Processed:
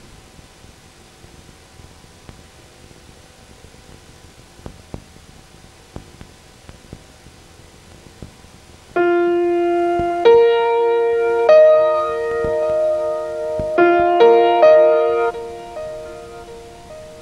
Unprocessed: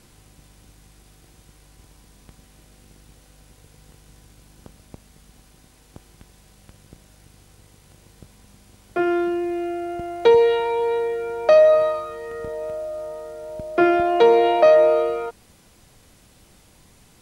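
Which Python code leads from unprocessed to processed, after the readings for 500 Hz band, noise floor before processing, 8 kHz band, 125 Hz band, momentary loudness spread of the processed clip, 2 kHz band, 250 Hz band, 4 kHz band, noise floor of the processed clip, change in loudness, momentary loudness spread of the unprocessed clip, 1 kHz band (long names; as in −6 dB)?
+4.5 dB, −54 dBFS, can't be measured, +7.5 dB, 18 LU, +4.5 dB, +6.0 dB, +4.0 dB, −46 dBFS, +4.5 dB, 18 LU, +5.5 dB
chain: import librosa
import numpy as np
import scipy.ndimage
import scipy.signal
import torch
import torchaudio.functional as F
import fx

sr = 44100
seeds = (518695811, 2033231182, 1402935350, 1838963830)

p1 = fx.hum_notches(x, sr, base_hz=50, count=6)
p2 = fx.over_compress(p1, sr, threshold_db=-28.0, ratio=-1.0)
p3 = p1 + F.gain(torch.from_numpy(p2), -3.0).numpy()
p4 = fx.air_absorb(p3, sr, metres=50.0)
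p5 = fx.echo_feedback(p4, sr, ms=1137, feedback_pct=40, wet_db=-19.5)
y = F.gain(torch.from_numpy(p5), 3.5).numpy()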